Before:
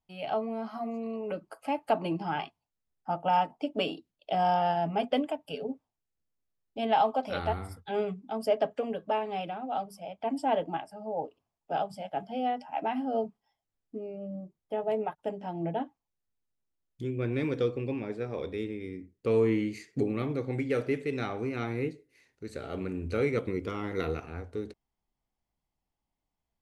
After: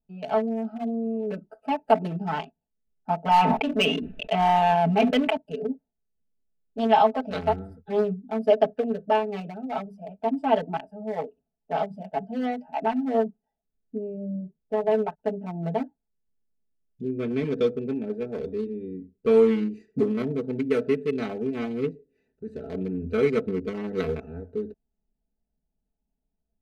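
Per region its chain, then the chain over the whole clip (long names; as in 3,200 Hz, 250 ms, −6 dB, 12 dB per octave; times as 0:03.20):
0:03.31–0:05.37: high shelf with overshoot 3,700 Hz −12.5 dB, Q 3 + hard clipping −20 dBFS + level that may fall only so fast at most 27 dB per second
whole clip: adaptive Wiener filter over 41 samples; comb filter 4.6 ms, depth 98%; level +3 dB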